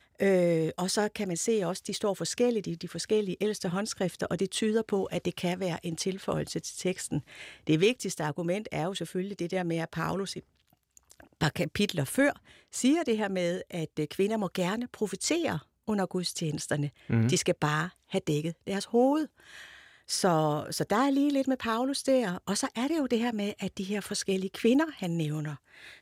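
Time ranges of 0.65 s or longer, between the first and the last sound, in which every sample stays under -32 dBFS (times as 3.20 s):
10.39–11.41 s
19.25–20.10 s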